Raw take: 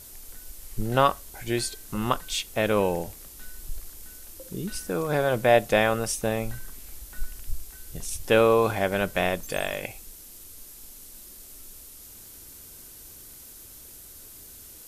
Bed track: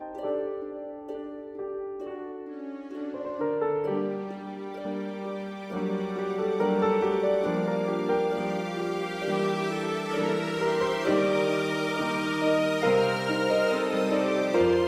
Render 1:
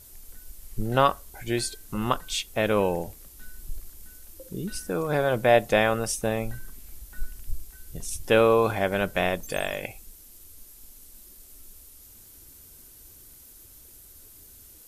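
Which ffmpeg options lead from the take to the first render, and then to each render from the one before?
-af "afftdn=nr=6:nf=-46"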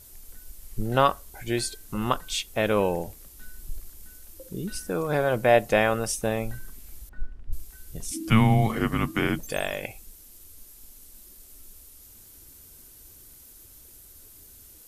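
-filter_complex "[0:a]asettb=1/sr,asplit=3[a][b][c];[a]atrim=end=5.194[d];[b]atrim=start=5.19:end=5.91,asetpts=PTS-STARTPTS,afade=t=in:d=0.004:c=qsin,afade=t=out:st=0.716:d=0.004:c=qsin,bandreject=f=3.5k:w=14[e];[c]atrim=start=5.906[f];[d][e]acrossfade=d=0.004:c1=hsin:c2=qsin[g];[g][f]acrossfade=d=0.004:c1=qsin:c2=hsin,asettb=1/sr,asplit=3[h][i][j];[h]atrim=end=7.094[k];[i]atrim=start=7.09:end=7.53,asetpts=PTS-STARTPTS,afade=t=in:d=0.004:c=qsin,afade=t=out:st=0.436:d=0.004:c=qsin,adynamicsmooth=sensitivity=4:basefreq=1.5k[l];[j]atrim=start=7.526[m];[k][l]acrossfade=d=0.004:c1=hsin:c2=qsin[n];[n][m]acrossfade=d=0.004:c1=qsin:c2=hsin,asettb=1/sr,asplit=3[o][p][q];[o]atrim=end=8.114[r];[p]atrim=start=8.11:end=9.39,asetpts=PTS-STARTPTS,afade=t=in:d=0.004:c=qsin,afade=t=out:st=1.276:d=0.004:c=qsin,afreqshift=-330[s];[q]atrim=start=9.386[t];[r][s]acrossfade=d=0.004:c1=hsin:c2=qsin[u];[u][t]acrossfade=d=0.004:c1=qsin:c2=hsin"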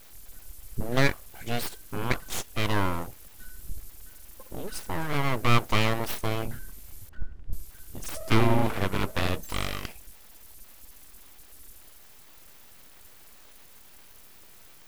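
-af "aeval=exprs='abs(val(0))':c=same"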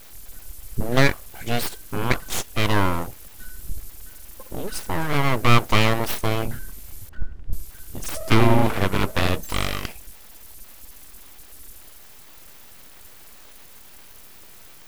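-af "volume=6dB,alimiter=limit=-2dB:level=0:latency=1"

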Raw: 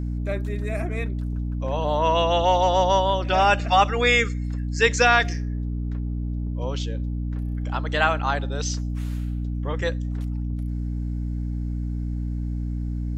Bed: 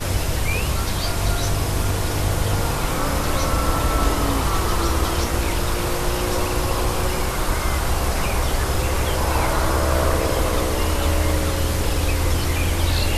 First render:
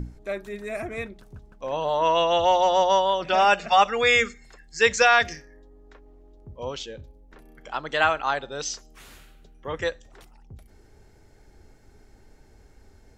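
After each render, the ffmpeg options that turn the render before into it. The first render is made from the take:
-af "bandreject=f=60:t=h:w=6,bandreject=f=120:t=h:w=6,bandreject=f=180:t=h:w=6,bandreject=f=240:t=h:w=6,bandreject=f=300:t=h:w=6"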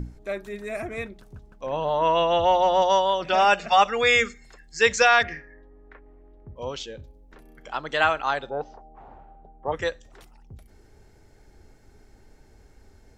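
-filter_complex "[0:a]asettb=1/sr,asplit=3[a][b][c];[a]atrim=end=1.664[d];[b]atrim=start=1.66:end=2.82,asetpts=PTS-STARTPTS,afade=t=in:d=0.004:c=qsin,afade=t=out:st=1.156:d=0.004:c=qsin,bass=f=250:g=4,treble=f=4k:g=-9[e];[c]atrim=start=2.816[f];[d][e]acrossfade=d=0.004:c1=hsin:c2=qsin[g];[g][f]acrossfade=d=0.004:c1=qsin:c2=hsin,asplit=3[h][i][j];[h]afade=t=out:st=5.22:d=0.02[k];[i]lowpass=f=2k:t=q:w=2.2,afade=t=in:st=5.22:d=0.02,afade=t=out:st=6.55:d=0.02[l];[j]afade=t=in:st=6.55:d=0.02[m];[k][l][m]amix=inputs=3:normalize=0,asplit=3[n][o][p];[n]afade=t=out:st=8.49:d=0.02[q];[o]lowpass=f=800:t=q:w=7.1,afade=t=in:st=8.49:d=0.02,afade=t=out:st=9.71:d=0.02[r];[p]afade=t=in:st=9.71:d=0.02[s];[q][r][s]amix=inputs=3:normalize=0"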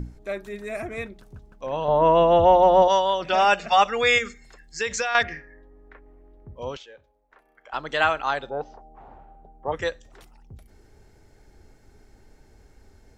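-filter_complex "[0:a]asettb=1/sr,asplit=3[a][b][c];[a]atrim=end=1.884[d];[b]atrim=start=1.88:end=2.88,asetpts=PTS-STARTPTS,afade=t=in:d=0.004:c=qsin,afade=t=out:st=0.996:d=0.004:c=qsin,tiltshelf=f=1.3k:g=8[e];[c]atrim=start=2.876[f];[d][e]acrossfade=d=0.004:c1=hsin:c2=qsin[g];[g][f]acrossfade=d=0.004:c1=qsin:c2=hsin,asettb=1/sr,asplit=3[h][i][j];[h]atrim=end=4.184[k];[i]atrim=start=4.18:end=5.15,asetpts=PTS-STARTPTS,afade=t=in:d=0.004:c=qsin,afade=t=out:st=0.966:d=0.004:c=qsin,acompressor=threshold=-23dB:ratio=4:attack=3.2:release=140:knee=1:detection=peak[l];[j]atrim=start=5.146[m];[k][l]acrossfade=d=0.004:c1=hsin:c2=qsin[n];[n][m]acrossfade=d=0.004:c1=qsin:c2=hsin,asettb=1/sr,asplit=3[o][p][q];[o]atrim=end=6.774[r];[p]atrim=start=6.77:end=7.73,asetpts=PTS-STARTPTS,afade=t=in:d=0.004:c=qsin,afade=t=out:st=0.956:d=0.004:c=qsin,acrossover=split=580 2300:gain=0.0794 1 0.2[s][t][u];[s][t][u]amix=inputs=3:normalize=0[v];[q]atrim=start=7.726[w];[r][v]acrossfade=d=0.004:c1=hsin:c2=qsin[x];[x][w]acrossfade=d=0.004:c1=qsin:c2=hsin"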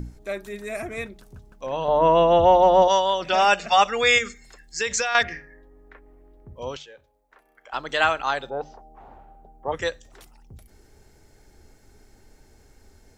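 -af "highshelf=f=4.8k:g=8,bandreject=f=50:t=h:w=6,bandreject=f=100:t=h:w=6,bandreject=f=150:t=h:w=6"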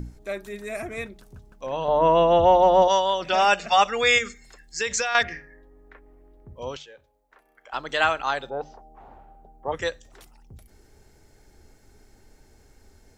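-af "volume=-1dB"

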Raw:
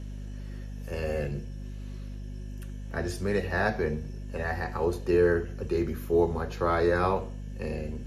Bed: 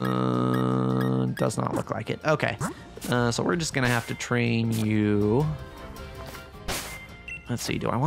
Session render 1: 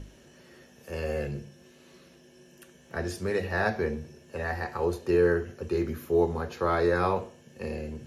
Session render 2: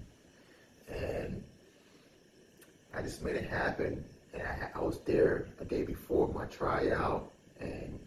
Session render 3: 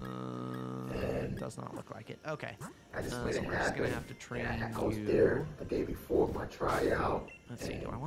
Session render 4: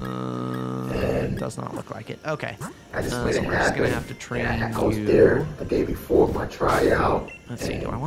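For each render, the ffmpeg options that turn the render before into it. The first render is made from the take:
-af "bandreject=f=50:t=h:w=6,bandreject=f=100:t=h:w=6,bandreject=f=150:t=h:w=6,bandreject=f=200:t=h:w=6,bandreject=f=250:t=h:w=6"
-af "afftfilt=real='hypot(re,im)*cos(2*PI*random(0))':imag='hypot(re,im)*sin(2*PI*random(1))':win_size=512:overlap=0.75"
-filter_complex "[1:a]volume=-16dB[a];[0:a][a]amix=inputs=2:normalize=0"
-af "volume=11.5dB"

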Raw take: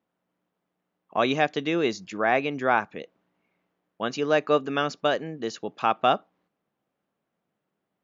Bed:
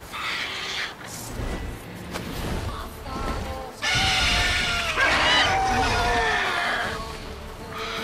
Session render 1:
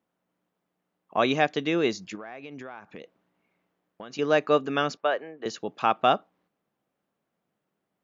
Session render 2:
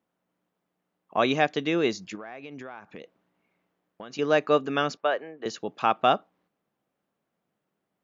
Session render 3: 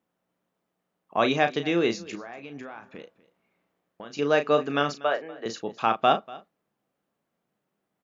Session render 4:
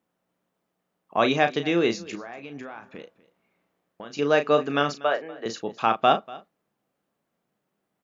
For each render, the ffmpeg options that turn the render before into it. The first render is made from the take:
-filter_complex "[0:a]asettb=1/sr,asplit=3[a][b][c];[a]atrim=end=2.154[d];[b]atrim=start=2.15:end=4.19,asetpts=PTS-STARTPTS,afade=t=in:d=0.004:c=qsin,afade=t=out:st=2.036:d=0.004:c=qsin,acompressor=threshold=-36dB:ratio=12:attack=3.2:release=140:knee=1:detection=peak[e];[c]atrim=start=4.186[f];[d][e]acrossfade=d=0.004:c1=hsin:c2=qsin[g];[g][f]acrossfade=d=0.004:c1=qsin:c2=hsin,asettb=1/sr,asplit=3[h][i][j];[h]atrim=end=4.974[k];[i]atrim=start=4.97:end=5.46,asetpts=PTS-STARTPTS,afade=t=in:d=0.004:c=qsin,afade=t=out:st=0.486:d=0.004:c=qsin,acrossover=split=390 2900:gain=0.1 1 0.0891[l][m][n];[l][m][n]amix=inputs=3:normalize=0[o];[j]atrim=start=5.456[p];[k][o]acrossfade=d=0.004:c1=hsin:c2=qsin[q];[q][p]acrossfade=d=0.004:c1=qsin:c2=hsin"
-af anull
-filter_complex "[0:a]asplit=2[a][b];[b]adelay=35,volume=-8.5dB[c];[a][c]amix=inputs=2:normalize=0,aecho=1:1:241:0.0944"
-af "volume=1.5dB"

